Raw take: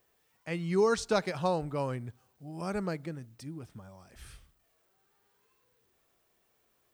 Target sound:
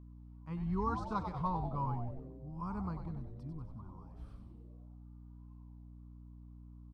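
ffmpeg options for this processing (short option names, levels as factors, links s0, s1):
-filter_complex "[0:a]firequalizer=gain_entry='entry(130,0);entry(370,-15);entry(660,-22);entry(1000,4);entry(1700,-22);entry(4300,-20);entry(6700,-29)':delay=0.05:min_phase=1,asplit=8[s0][s1][s2][s3][s4][s5][s6][s7];[s1]adelay=95,afreqshift=-130,volume=0.473[s8];[s2]adelay=190,afreqshift=-260,volume=0.269[s9];[s3]adelay=285,afreqshift=-390,volume=0.153[s10];[s4]adelay=380,afreqshift=-520,volume=0.0881[s11];[s5]adelay=475,afreqshift=-650,volume=0.0501[s12];[s6]adelay=570,afreqshift=-780,volume=0.0285[s13];[s7]adelay=665,afreqshift=-910,volume=0.0162[s14];[s0][s8][s9][s10][s11][s12][s13][s14]amix=inputs=8:normalize=0,aeval=exprs='val(0)+0.00282*(sin(2*PI*60*n/s)+sin(2*PI*2*60*n/s)/2+sin(2*PI*3*60*n/s)/3+sin(2*PI*4*60*n/s)/4+sin(2*PI*5*60*n/s)/5)':c=same"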